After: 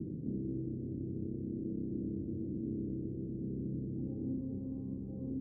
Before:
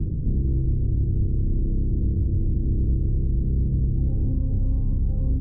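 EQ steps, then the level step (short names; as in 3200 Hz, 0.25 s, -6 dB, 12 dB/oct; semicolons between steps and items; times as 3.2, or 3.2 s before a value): ladder band-pass 340 Hz, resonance 25%; +5.5 dB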